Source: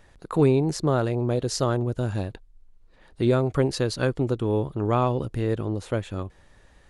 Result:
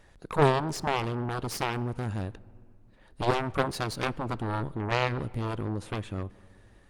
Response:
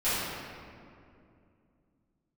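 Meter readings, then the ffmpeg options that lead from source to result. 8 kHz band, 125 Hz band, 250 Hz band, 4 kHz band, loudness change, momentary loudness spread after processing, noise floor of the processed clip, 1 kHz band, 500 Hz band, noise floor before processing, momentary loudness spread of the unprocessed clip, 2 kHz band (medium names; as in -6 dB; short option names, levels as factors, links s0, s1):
-5.5 dB, -6.5 dB, -8.0 dB, -1.0 dB, -5.5 dB, 10 LU, -57 dBFS, +1.0 dB, -6.5 dB, -57 dBFS, 8 LU, +3.0 dB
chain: -filter_complex "[0:a]aeval=exprs='0.398*(cos(1*acos(clip(val(0)/0.398,-1,1)))-cos(1*PI/2))+0.112*(cos(3*acos(clip(val(0)/0.398,-1,1)))-cos(3*PI/2))+0.00562*(cos(5*acos(clip(val(0)/0.398,-1,1)))-cos(5*PI/2))+0.0447*(cos(6*acos(clip(val(0)/0.398,-1,1)))-cos(6*PI/2))+0.0562*(cos(7*acos(clip(val(0)/0.398,-1,1)))-cos(7*PI/2))':c=same,asplit=2[s0][s1];[1:a]atrim=start_sample=2205,adelay=19[s2];[s1][s2]afir=irnorm=-1:irlink=0,volume=0.0224[s3];[s0][s3]amix=inputs=2:normalize=0" -ar 48000 -c:a libopus -b:a 48k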